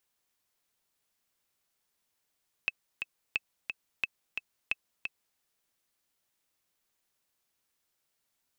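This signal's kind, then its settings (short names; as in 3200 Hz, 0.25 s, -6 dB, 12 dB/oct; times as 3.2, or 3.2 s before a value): metronome 177 bpm, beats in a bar 2, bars 4, 2610 Hz, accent 5.5 dB -15 dBFS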